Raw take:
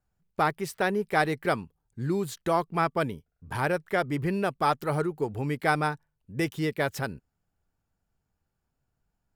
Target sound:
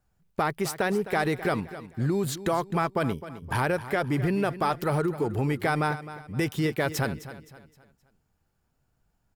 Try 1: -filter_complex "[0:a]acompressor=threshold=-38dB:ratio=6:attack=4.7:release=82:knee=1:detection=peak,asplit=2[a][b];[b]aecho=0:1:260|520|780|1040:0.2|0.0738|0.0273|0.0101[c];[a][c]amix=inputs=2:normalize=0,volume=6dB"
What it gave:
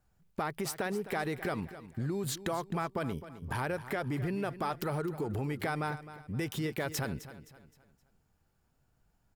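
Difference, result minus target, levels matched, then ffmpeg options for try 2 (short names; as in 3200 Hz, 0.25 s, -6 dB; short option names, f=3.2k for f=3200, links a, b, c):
compressor: peak gain reduction +8.5 dB
-filter_complex "[0:a]acompressor=threshold=-28dB:ratio=6:attack=4.7:release=82:knee=1:detection=peak,asplit=2[a][b];[b]aecho=0:1:260|520|780|1040:0.2|0.0738|0.0273|0.0101[c];[a][c]amix=inputs=2:normalize=0,volume=6dB"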